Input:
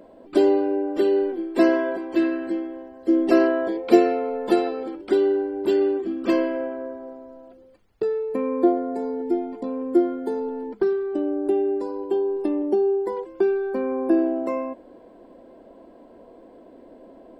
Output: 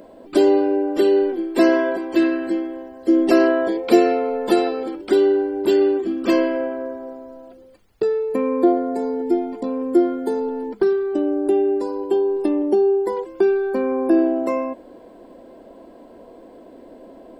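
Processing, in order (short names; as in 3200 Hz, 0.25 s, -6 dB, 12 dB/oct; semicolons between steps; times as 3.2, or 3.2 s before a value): high shelf 4200 Hz +7.5 dB; in parallel at 0 dB: limiter -12.5 dBFS, peak gain reduction 10 dB; on the sum: gain -2 dB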